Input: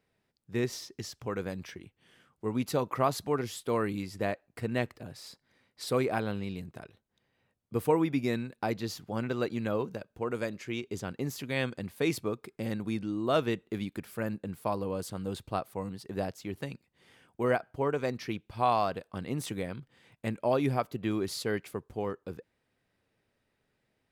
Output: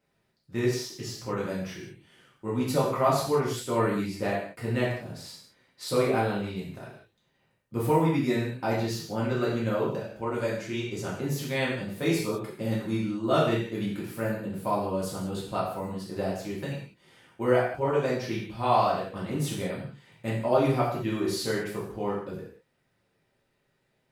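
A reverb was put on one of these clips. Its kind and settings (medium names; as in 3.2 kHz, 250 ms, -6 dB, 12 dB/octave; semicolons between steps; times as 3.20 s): gated-style reverb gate 230 ms falling, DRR -7 dB; trim -3.5 dB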